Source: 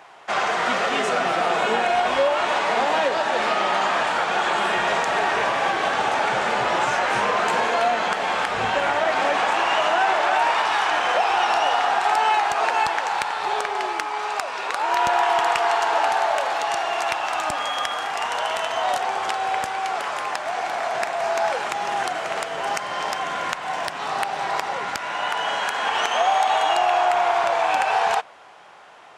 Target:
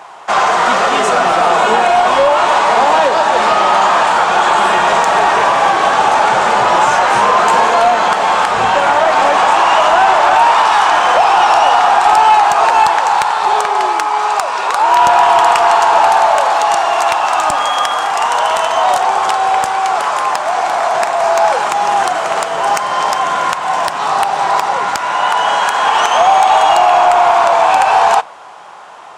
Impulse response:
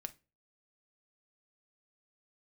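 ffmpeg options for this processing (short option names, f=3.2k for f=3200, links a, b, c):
-filter_complex "[0:a]equalizer=f=1k:t=o:w=1:g=7,equalizer=f=2k:t=o:w=1:g=-3,equalizer=f=8k:t=o:w=1:g=5,acontrast=89,asplit=2[a][b];[1:a]atrim=start_sample=2205[c];[b][c]afir=irnorm=-1:irlink=0,volume=-4.5dB[d];[a][d]amix=inputs=2:normalize=0,volume=-2dB"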